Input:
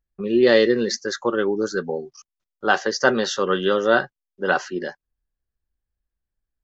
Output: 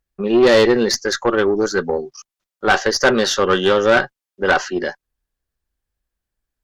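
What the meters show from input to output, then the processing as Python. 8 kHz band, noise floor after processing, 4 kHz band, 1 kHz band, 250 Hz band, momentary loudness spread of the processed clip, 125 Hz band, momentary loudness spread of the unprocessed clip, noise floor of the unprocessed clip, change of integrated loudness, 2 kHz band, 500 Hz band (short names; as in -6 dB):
n/a, under -85 dBFS, +6.0 dB, +4.5 dB, +4.0 dB, 12 LU, +5.5 dB, 14 LU, under -85 dBFS, +4.5 dB, +4.5 dB, +4.5 dB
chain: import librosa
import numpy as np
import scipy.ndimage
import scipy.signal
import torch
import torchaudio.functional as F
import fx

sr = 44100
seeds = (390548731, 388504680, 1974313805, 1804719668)

y = fx.low_shelf(x, sr, hz=220.0, db=-5.5)
y = fx.tube_stage(y, sr, drive_db=15.0, bias=0.35)
y = F.gain(torch.from_numpy(y), 8.5).numpy()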